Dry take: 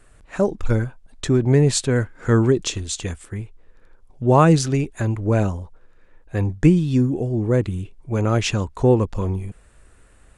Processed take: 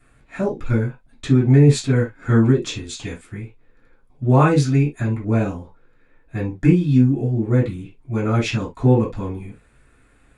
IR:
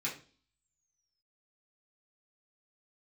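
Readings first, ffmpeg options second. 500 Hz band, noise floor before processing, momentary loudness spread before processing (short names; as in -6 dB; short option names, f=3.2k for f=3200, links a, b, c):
-2.0 dB, -51 dBFS, 15 LU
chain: -filter_complex "[0:a]equalizer=f=6.9k:w=1.4:g=-6[a];[1:a]atrim=start_sample=2205,atrim=end_sample=3528[b];[a][b]afir=irnorm=-1:irlink=0,volume=-3dB"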